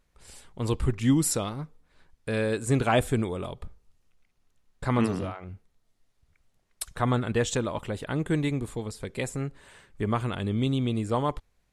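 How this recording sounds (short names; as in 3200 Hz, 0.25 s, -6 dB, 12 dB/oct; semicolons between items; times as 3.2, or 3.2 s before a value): noise floor -71 dBFS; spectral tilt -5.5 dB/oct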